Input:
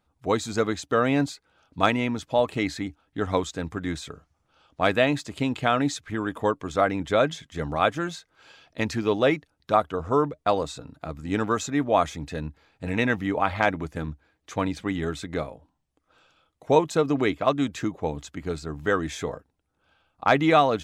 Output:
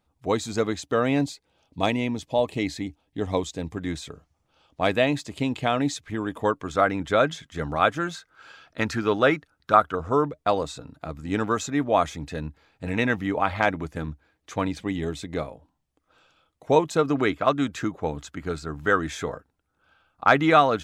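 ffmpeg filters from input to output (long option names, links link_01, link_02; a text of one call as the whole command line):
ffmpeg -i in.wav -af "asetnsamples=nb_out_samples=441:pad=0,asendcmd='1.19 equalizer g -14;3.77 equalizer g -5.5;6.45 equalizer g 4;8.15 equalizer g 10.5;9.95 equalizer g 0.5;14.8 equalizer g -9.5;15.37 equalizer g 0;16.99 equalizer g 6.5',equalizer=frequency=1400:width_type=o:width=0.52:gain=-4" out.wav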